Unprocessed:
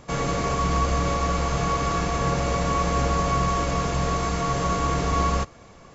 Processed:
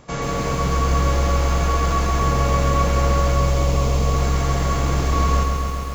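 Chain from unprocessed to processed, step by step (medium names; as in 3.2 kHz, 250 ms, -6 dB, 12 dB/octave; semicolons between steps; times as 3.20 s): 3.32–4.14 s: peaking EQ 1.6 kHz -11.5 dB 0.47 oct; bit-crushed delay 134 ms, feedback 80%, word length 7-bit, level -5 dB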